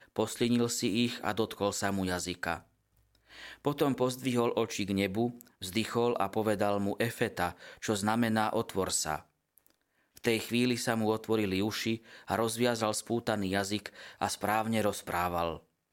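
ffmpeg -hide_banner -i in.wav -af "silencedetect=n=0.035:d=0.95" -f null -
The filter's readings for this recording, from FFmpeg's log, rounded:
silence_start: 2.57
silence_end: 3.66 | silence_duration: 1.10
silence_start: 9.16
silence_end: 10.24 | silence_duration: 1.08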